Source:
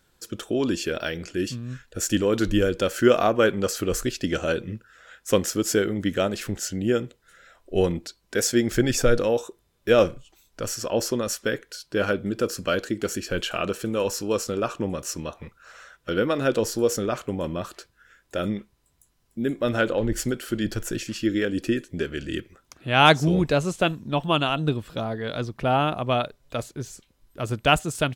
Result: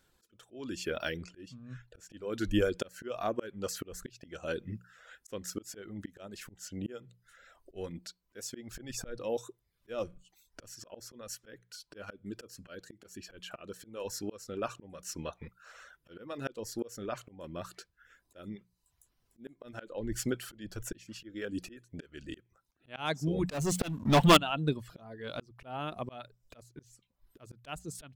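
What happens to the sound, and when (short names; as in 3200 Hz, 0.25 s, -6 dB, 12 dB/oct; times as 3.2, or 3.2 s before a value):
1.21–2.14 LPF 3400 Hz 6 dB/oct
23.5–24.37 sample leveller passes 5
whole clip: reverb removal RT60 0.52 s; notches 60/120/180 Hz; auto swell 0.471 s; gain -5.5 dB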